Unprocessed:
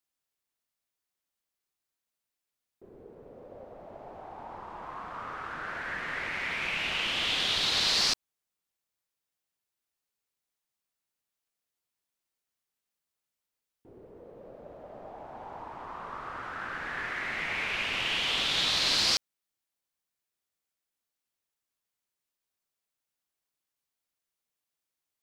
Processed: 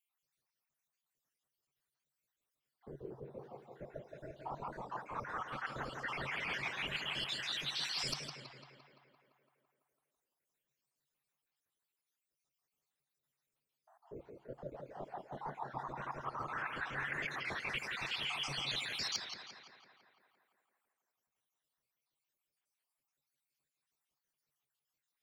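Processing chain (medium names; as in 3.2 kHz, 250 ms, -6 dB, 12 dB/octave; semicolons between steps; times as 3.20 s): random holes in the spectrogram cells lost 69%; reverb removal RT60 1.8 s; peaking EQ 140 Hz +11 dB 0.24 oct; reverse; compression 6:1, threshold -41 dBFS, peak gain reduction 14 dB; reverse; tape echo 169 ms, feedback 71%, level -4 dB, low-pass 3.5 kHz; on a send at -19 dB: reverberation RT60 1.6 s, pre-delay 4 ms; on the sum: warped record 33 1/3 rpm, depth 100 cents; trim +3.5 dB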